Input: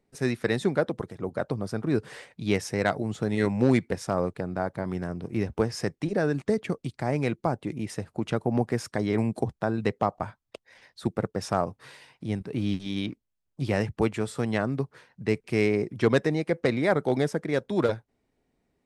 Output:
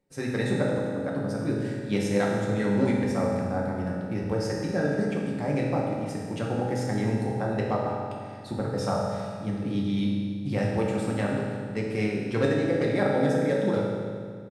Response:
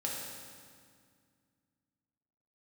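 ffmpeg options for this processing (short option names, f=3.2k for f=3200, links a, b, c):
-filter_complex "[0:a]aecho=1:1:392:0.112,atempo=1.3[a];[1:a]atrim=start_sample=2205[b];[a][b]afir=irnorm=-1:irlink=0,volume=-3.5dB"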